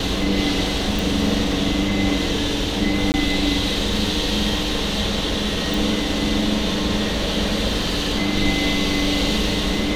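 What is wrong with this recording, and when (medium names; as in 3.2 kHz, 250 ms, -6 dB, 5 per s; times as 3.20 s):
0.99 s: pop
3.12–3.14 s: dropout 19 ms
5.74 s: pop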